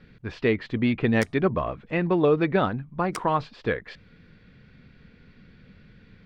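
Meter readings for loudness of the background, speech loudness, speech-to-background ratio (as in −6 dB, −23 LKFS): −42.5 LKFS, −25.0 LKFS, 17.5 dB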